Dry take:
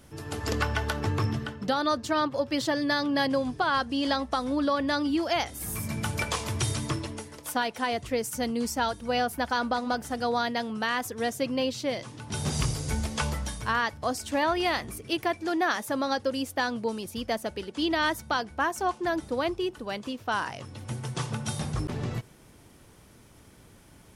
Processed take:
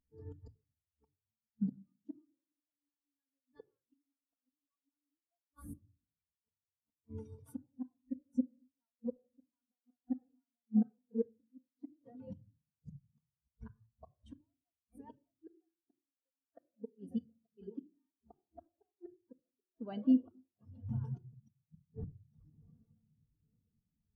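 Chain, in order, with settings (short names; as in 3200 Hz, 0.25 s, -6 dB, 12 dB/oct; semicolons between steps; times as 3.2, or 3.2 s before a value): swung echo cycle 0.857 s, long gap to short 3:1, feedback 38%, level -16 dB; flipped gate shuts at -22 dBFS, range -34 dB; shoebox room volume 3100 m³, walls furnished, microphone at 1.7 m; spectral expander 2.5:1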